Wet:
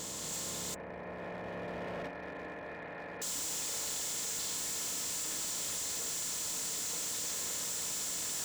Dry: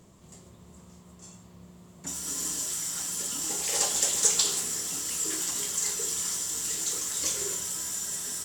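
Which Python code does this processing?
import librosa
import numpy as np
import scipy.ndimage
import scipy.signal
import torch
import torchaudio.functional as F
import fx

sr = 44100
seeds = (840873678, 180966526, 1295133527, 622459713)

y = fx.bin_compress(x, sr, power=0.4)
y = fx.recorder_agc(y, sr, target_db=-10.0, rise_db_per_s=6.8, max_gain_db=30)
y = fx.cheby_ripple(y, sr, hz=2500.0, ripple_db=9, at=(0.74, 3.22))
y = fx.tube_stage(y, sr, drive_db=29.0, bias=0.65)
y = np.clip(10.0 ** (35.0 / 20.0) * y, -1.0, 1.0) / 10.0 ** (35.0 / 20.0)
y = fx.notch_comb(y, sr, f0_hz=390.0)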